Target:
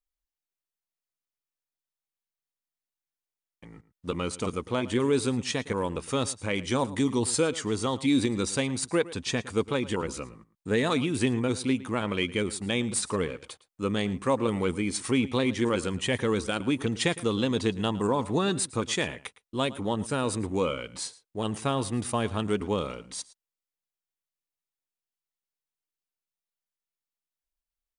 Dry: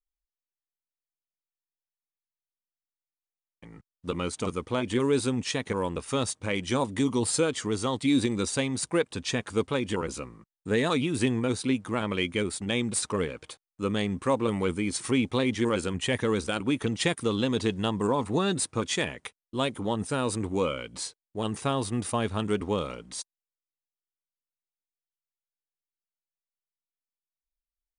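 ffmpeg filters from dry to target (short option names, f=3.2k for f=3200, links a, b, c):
-filter_complex "[0:a]asplit=2[a][b];[b]adelay=110.8,volume=-18dB,highshelf=f=4k:g=-2.49[c];[a][c]amix=inputs=2:normalize=0"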